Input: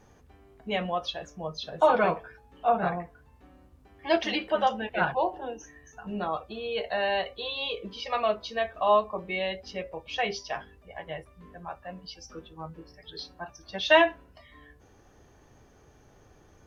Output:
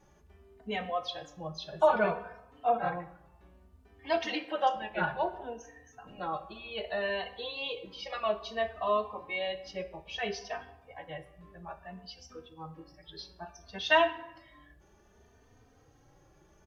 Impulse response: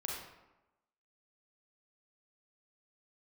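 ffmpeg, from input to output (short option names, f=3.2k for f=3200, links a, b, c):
-filter_complex "[0:a]asettb=1/sr,asplit=3[a][b][c];[a]atrim=end=4.244[d];[b]atrim=start=4.24:end=4.76,asetpts=PTS-STARTPTS,afade=t=in:d=0.004:c=qsin,afade=t=out:st=0.516:d=0.004:c=qsin,highpass=f=220:p=1[e];[c]atrim=start=4.756[f];[d][e]acrossfade=d=0.004:c1=hsin:c2=qsin[g];[g][f]acrossfade=d=0.004:c1=qsin:c2=hsin,asplit=2[h][i];[1:a]atrim=start_sample=2205[j];[i][j]afir=irnorm=-1:irlink=0,volume=-10.5dB[k];[h][k]amix=inputs=2:normalize=0,asplit=2[l][m];[m]adelay=3.1,afreqshift=0.61[n];[l][n]amix=inputs=2:normalize=1,volume=-3.5dB"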